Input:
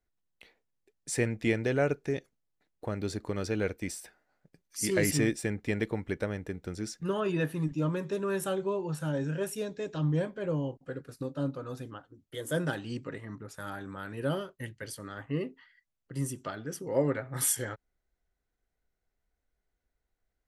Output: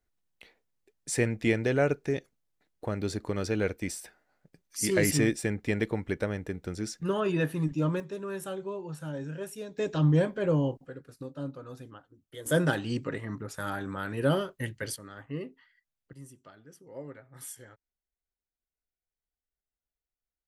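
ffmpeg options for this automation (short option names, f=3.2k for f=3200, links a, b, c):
-af "asetnsamples=n=441:p=0,asendcmd='8 volume volume -5dB;9.78 volume volume 5.5dB;10.86 volume volume -4.5dB;12.46 volume volume 5.5dB;14.96 volume volume -4dB;16.13 volume volume -15dB',volume=2dB"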